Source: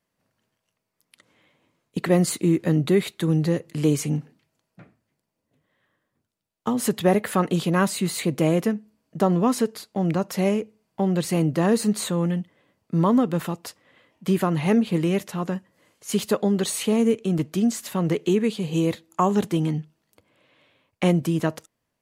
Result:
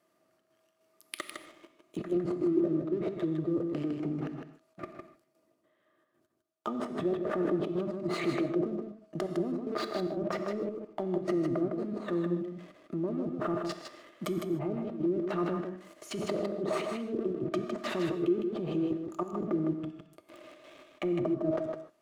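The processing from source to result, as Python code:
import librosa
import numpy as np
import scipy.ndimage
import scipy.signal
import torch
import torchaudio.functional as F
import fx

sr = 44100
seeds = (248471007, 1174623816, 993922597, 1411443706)

y = fx.highpass(x, sr, hz=240.0, slope=6)
y = fx.env_lowpass_down(y, sr, base_hz=410.0, full_db=-21.0)
y = fx.over_compress(y, sr, threshold_db=-34.0, ratio=-1.0)
y = fx.leveller(y, sr, passes=2)
y = fx.level_steps(y, sr, step_db=20)
y = fx.small_body(y, sr, hz=(350.0, 630.0, 1200.0), ring_ms=60, db=16)
y = fx.step_gate(y, sr, bpm=149, pattern='xxxx.xx.', floor_db=-12.0, edge_ms=4.5)
y = y + 10.0 ** (-5.5 / 20.0) * np.pad(y, (int(157 * sr / 1000.0), 0))[:len(y)]
y = fx.rev_gated(y, sr, seeds[0], gate_ms=170, shape='flat', drr_db=9.5)
y = y * librosa.db_to_amplitude(1.5)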